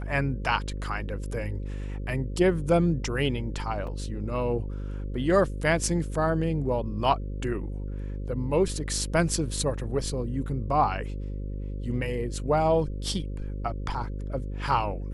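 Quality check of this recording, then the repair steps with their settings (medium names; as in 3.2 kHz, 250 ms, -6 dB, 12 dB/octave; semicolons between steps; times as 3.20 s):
buzz 50 Hz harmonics 11 -33 dBFS
3.87 s: dropout 3 ms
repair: de-hum 50 Hz, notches 11; interpolate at 3.87 s, 3 ms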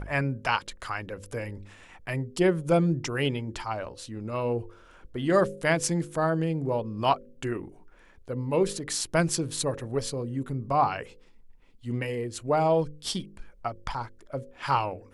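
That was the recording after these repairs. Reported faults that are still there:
nothing left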